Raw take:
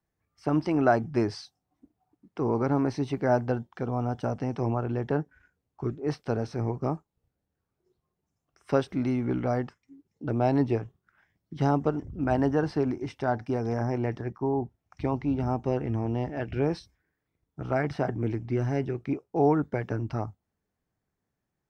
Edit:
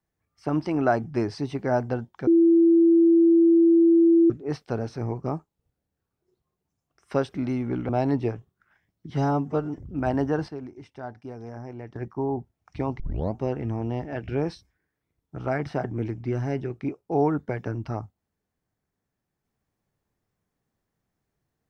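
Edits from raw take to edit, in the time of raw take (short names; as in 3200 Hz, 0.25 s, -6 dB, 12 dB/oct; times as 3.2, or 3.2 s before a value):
1.38–2.96 cut
3.85–5.88 bleep 334 Hz -13.5 dBFS
9.47–10.36 cut
11.57–12.02 stretch 1.5×
12.73–14.2 gain -10 dB
15.24 tape start 0.36 s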